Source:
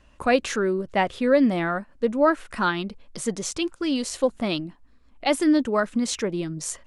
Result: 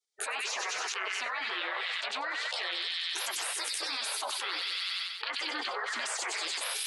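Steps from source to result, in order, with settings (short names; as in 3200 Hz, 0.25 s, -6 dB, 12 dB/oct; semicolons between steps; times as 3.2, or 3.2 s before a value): 1.26–2.86 graphic EQ 2000/4000/8000 Hz +11/+11/+10 dB; treble ducked by the level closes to 1300 Hz, closed at -17.5 dBFS; flange 1.7 Hz, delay 6.8 ms, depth 7.3 ms, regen +9%; gate -47 dBFS, range -50 dB; steep high-pass 530 Hz 48 dB/oct; spectral gate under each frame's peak -20 dB weak; thin delay 95 ms, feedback 63%, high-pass 3000 Hz, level -8 dB; fast leveller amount 100%; gain +2 dB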